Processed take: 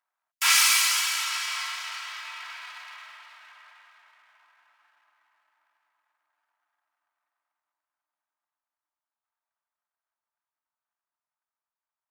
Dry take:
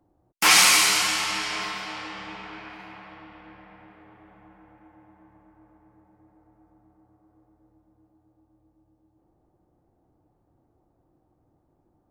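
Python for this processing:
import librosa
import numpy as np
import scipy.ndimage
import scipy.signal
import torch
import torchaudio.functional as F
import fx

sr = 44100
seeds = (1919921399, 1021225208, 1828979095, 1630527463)

y = fx.lower_of_two(x, sr, delay_ms=3.1)
y = fx.doppler_pass(y, sr, speed_mps=6, closest_m=7.3, pass_at_s=2.89)
y = scipy.signal.sosfilt(scipy.signal.butter(4, 1100.0, 'highpass', fs=sr, output='sos'), y)
y = y * 10.0 ** (5.0 / 20.0)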